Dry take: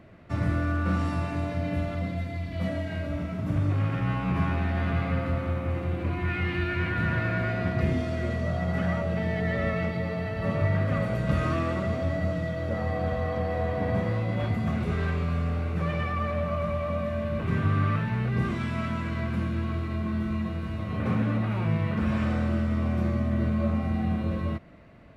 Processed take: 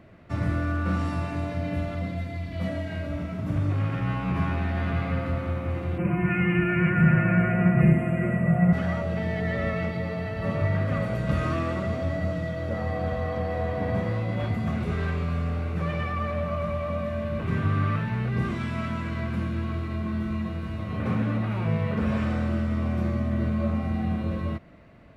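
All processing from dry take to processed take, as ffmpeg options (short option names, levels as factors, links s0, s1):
-filter_complex "[0:a]asettb=1/sr,asplit=3[s0][s1][s2];[s0]atrim=end=5.984[s3];[s1]atrim=start=5.98:end=8.73,asetpts=PTS-STARTPTS,afade=t=in:d=0.004:c=qsin,afade=t=out:st=2.746:d=0.004:c=qsin,asuperstop=centerf=4700:order=12:qfactor=1,equalizer=f=160:w=2:g=9.5,aecho=1:1:5.7:0.74,atrim=end_sample=121275[s4];[s2]atrim=start=8.726[s5];[s3][s4]acrossfade=d=0.004:c1=hsin:c2=qsin[s6];[s6][s5]acrossfade=d=0.004:c1=qsin:c2=hsin,asettb=1/sr,asplit=3[s7][s8][s9];[s7]atrim=end=21.654[s10];[s8]atrim=start=21.65:end=22.2,asetpts=PTS-STARTPTS,afade=t=in:d=0.004:c=qsin,afade=t=out:st=0.546:d=0.004:c=qsin,equalizer=f=440:t=o:w=0.91:g=6.5,bandreject=f=330:w=6.8[s11];[s9]atrim=start=22.196[s12];[s10][s11]acrossfade=d=0.004:c1=hsin:c2=qsin[s13];[s13][s12]acrossfade=d=0.004:c1=qsin:c2=hsin"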